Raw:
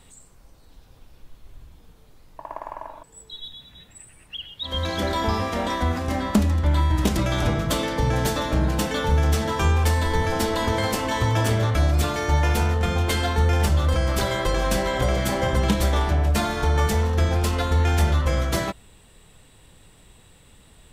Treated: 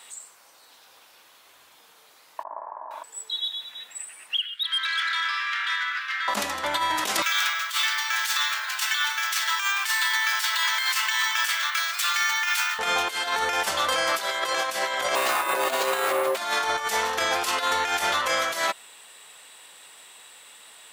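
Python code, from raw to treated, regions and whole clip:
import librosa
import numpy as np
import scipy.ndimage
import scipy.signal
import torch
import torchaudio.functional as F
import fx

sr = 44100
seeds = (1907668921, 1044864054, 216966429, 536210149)

y = fx.chain(x, sr, fx.bessel_lowpass(hz=870.0, order=6),
    fx.low_shelf_res(hz=100.0, db=6.0, q=3.0),
    fx.detune_double(cents=56), at=(2.43, 2.91))
y = fx.chain(y, sr, fx.ellip_highpass(hz=1400.0, order=4, stop_db=60),
    fx.air_absorb(metres=300.0),
    fx.leveller(passes=1), at=(4.4, 6.28))
y = fx.chain(y, sr, fx.highpass(hz=1300.0, slope=24),
    fx.resample_bad(factor=2, down='filtered', up='hold'), at=(7.22, 12.79))
y = fx.chain(y, sr, fx.resample_bad(factor=4, down='filtered', up='hold'),
    fx.ring_mod(carrier_hz=460.0), at=(15.15, 16.37))
y = scipy.signal.sosfilt(scipy.signal.butter(2, 920.0, 'highpass', fs=sr, output='sos'), y)
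y = fx.over_compress(y, sr, threshold_db=-32.0, ratio=-0.5)
y = y * 10.0 ** (8.0 / 20.0)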